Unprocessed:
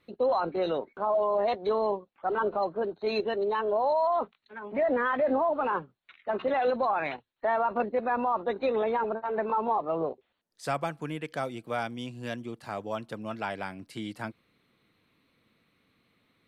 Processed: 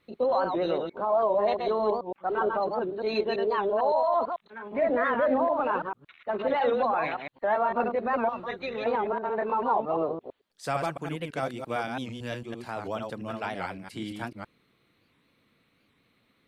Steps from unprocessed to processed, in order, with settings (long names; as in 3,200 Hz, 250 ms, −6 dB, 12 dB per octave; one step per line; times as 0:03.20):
delay that plays each chunk backwards 112 ms, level −4 dB
0:08.29–0:08.86: octave-band graphic EQ 125/250/500/1,000/2,000/8,000 Hz +6/−7/−6/−9/+5/+8 dB
wow of a warped record 78 rpm, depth 160 cents